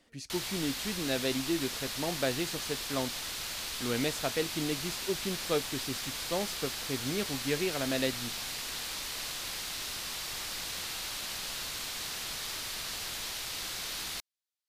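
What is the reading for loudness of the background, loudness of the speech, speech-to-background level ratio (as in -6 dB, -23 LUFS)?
-35.5 LUFS, -35.0 LUFS, 0.5 dB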